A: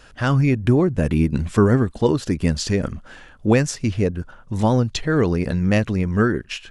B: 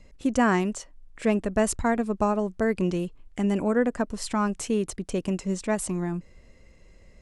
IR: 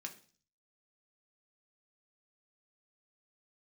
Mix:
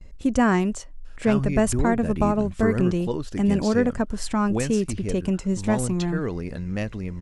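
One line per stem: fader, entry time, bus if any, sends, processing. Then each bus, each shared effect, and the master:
-10.0 dB, 1.05 s, no send, none
+0.5 dB, 0.00 s, no send, bass shelf 140 Hz +10 dB; gate with hold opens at -37 dBFS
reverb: none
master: none

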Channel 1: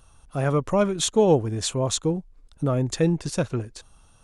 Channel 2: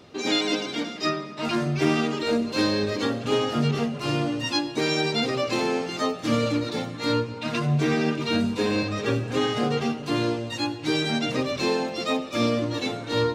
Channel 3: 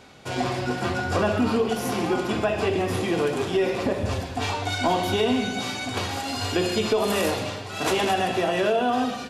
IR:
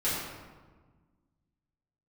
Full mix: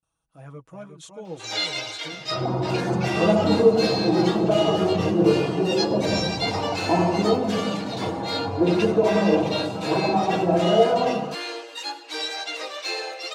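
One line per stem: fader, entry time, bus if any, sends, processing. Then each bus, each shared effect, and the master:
-17.0 dB, 0.00 s, no send, echo send -6.5 dB, gate with hold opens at -45 dBFS
+2.5 dB, 1.25 s, no send, echo send -15.5 dB, Bessel high-pass 720 Hz, order 8
+1.5 dB, 2.05 s, send -7.5 dB, no echo send, inverse Chebyshev low-pass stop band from 2.6 kHz, stop band 50 dB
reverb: on, RT60 1.4 s, pre-delay 3 ms
echo: delay 363 ms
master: high-pass 80 Hz; comb 6.2 ms, depth 67%; flange 2 Hz, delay 0.5 ms, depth 5.5 ms, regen -54%

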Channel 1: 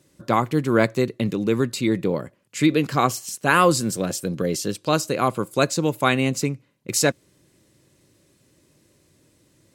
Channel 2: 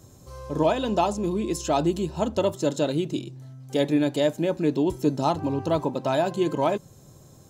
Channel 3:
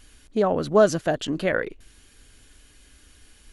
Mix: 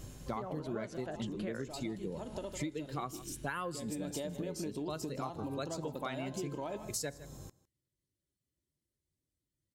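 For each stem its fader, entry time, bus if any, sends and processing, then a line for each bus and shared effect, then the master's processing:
-4.5 dB, 0.00 s, no bus, no send, echo send -22 dB, expander on every frequency bin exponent 1.5; band-stop 2.5 kHz, Q 12; feedback comb 71 Hz, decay 0.44 s, harmonics all, mix 30%
+1.0 dB, 0.00 s, bus A, no send, echo send -21 dB, de-hum 214.2 Hz, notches 32; compression, threshold -24 dBFS, peak gain reduction 8 dB; auto duck -12 dB, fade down 0.70 s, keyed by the third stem
-6.5 dB, 0.00 s, bus A, no send, no echo send, none
bus A: 0.0 dB, hum 50 Hz, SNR 23 dB; compression 1.5:1, threshold -38 dBFS, peak gain reduction 7.5 dB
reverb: none
echo: delay 157 ms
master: compression 10:1, threshold -35 dBFS, peak gain reduction 15.5 dB

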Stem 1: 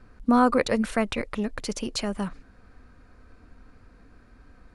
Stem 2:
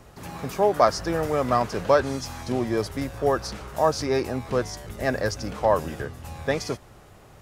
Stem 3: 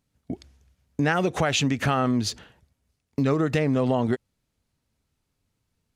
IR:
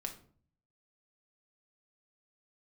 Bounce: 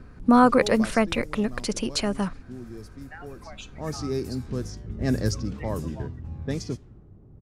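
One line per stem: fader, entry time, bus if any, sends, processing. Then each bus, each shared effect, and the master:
+3.0 dB, 0.00 s, no send, none
0.84 s -10 dB -> 1.21 s -17 dB -> 3.61 s -17 dB -> 3.83 s -5.5 dB -> 5.12 s -5.5 dB -> 5.49 s -13.5 dB, 0.00 s, send -20.5 dB, resonant low shelf 460 Hz +9 dB, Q 1.5; level-controlled noise filter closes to 680 Hz, open at -13.5 dBFS; tone controls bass +7 dB, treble +14 dB; auto duck -12 dB, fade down 0.20 s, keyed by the first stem
-11.5 dB, 2.05 s, send -4 dB, expander on every frequency bin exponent 3; steep high-pass 630 Hz; compression, threshold -32 dBFS, peak gain reduction 8.5 dB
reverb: on, RT60 0.50 s, pre-delay 5 ms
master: none

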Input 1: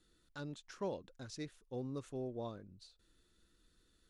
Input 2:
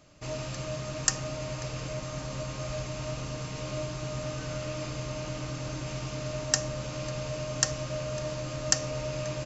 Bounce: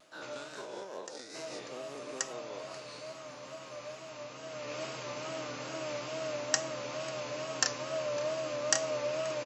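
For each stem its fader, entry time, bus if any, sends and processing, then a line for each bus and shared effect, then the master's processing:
+2.0 dB, 0.00 s, no send, no echo send, every event in the spectrogram widened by 480 ms; compression 2:1, threshold -44 dBFS, peak gain reduction 8 dB; tremolo 5.1 Hz, depth 49%
+0.5 dB, 0.00 s, no send, echo send -6 dB, treble shelf 6.9 kHz -11 dB; auto duck -23 dB, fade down 1.25 s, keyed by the first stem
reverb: none
echo: delay 1124 ms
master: high-pass 380 Hz 12 dB/octave; vibrato 2.3 Hz 75 cents

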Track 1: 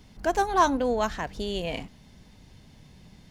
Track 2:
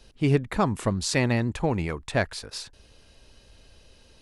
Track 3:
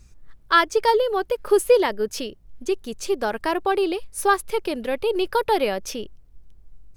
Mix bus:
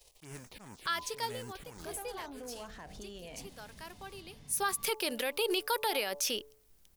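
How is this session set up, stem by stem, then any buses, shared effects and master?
-3.0 dB, 1.60 s, bus A, no send, compression 2.5:1, threshold -34 dBFS, peak gain reduction 12.5 dB; de-hum 54.6 Hz, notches 15
-9.0 dB, 0.00 s, bus A, no send, formants flattened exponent 0.3; touch-sensitive phaser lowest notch 230 Hz, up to 4.1 kHz, full sweep at -19.5 dBFS; slow attack 230 ms
-1.0 dB, 0.35 s, no bus, no send, tilt EQ +4 dB/octave; de-hum 144.5 Hz, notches 8; auto duck -23 dB, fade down 1.75 s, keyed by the second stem
bus A: 0.0 dB, hard clipper -32 dBFS, distortion -12 dB; peak limiter -40 dBFS, peak gain reduction 8 dB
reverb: none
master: peak limiter -21.5 dBFS, peak gain reduction 11 dB

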